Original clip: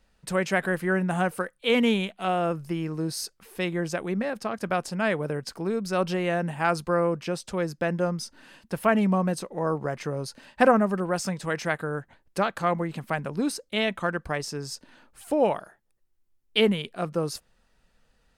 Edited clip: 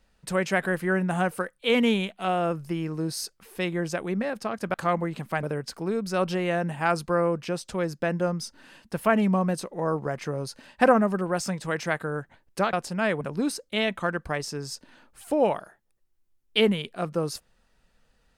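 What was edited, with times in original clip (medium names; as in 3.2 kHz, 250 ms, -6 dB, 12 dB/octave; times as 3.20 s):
4.74–5.22 s: swap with 12.52–13.21 s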